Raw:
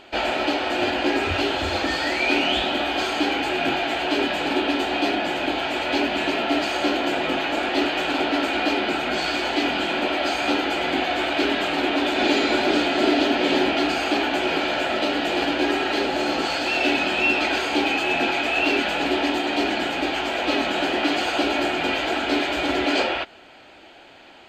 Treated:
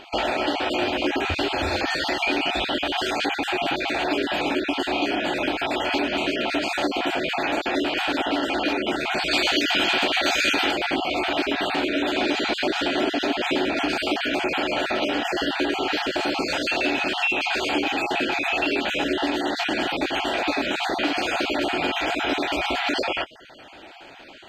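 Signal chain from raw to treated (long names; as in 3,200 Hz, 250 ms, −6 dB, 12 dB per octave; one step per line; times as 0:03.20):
time-frequency cells dropped at random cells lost 27%
downward compressor 3 to 1, threshold −25 dBFS, peak gain reduction 7.5 dB
0:09.31–0:10.71: high-shelf EQ 2,300 Hz +9 dB
level +3.5 dB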